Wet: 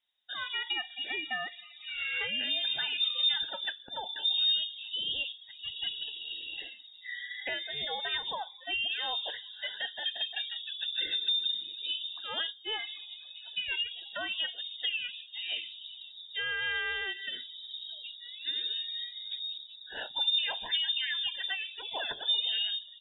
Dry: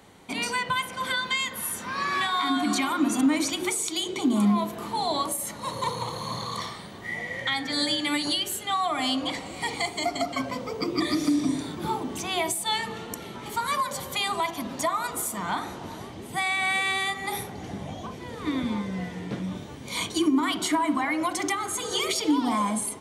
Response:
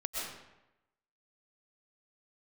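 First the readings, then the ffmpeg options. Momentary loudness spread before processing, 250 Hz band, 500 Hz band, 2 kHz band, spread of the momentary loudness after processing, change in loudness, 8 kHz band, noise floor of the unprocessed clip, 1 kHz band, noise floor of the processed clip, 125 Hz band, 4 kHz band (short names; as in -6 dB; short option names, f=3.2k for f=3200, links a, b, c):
10 LU, -31.0 dB, -15.0 dB, -5.0 dB, 13 LU, -5.0 dB, under -40 dB, -40 dBFS, -17.0 dB, -52 dBFS, under -25 dB, +2.0 dB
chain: -af "afftdn=nr=24:nf=-36,lowpass=f=3.3k:t=q:w=0.5098,lowpass=f=3.3k:t=q:w=0.6013,lowpass=f=3.3k:t=q:w=0.9,lowpass=f=3.3k:t=q:w=2.563,afreqshift=-3900,volume=-6.5dB"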